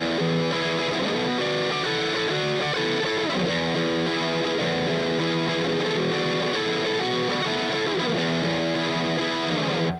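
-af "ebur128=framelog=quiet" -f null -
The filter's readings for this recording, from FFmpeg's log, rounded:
Integrated loudness:
  I:         -23.8 LUFS
  Threshold: -33.8 LUFS
Loudness range:
  LRA:         0.1 LU
  Threshold: -43.8 LUFS
  LRA low:   -23.8 LUFS
  LRA high:  -23.7 LUFS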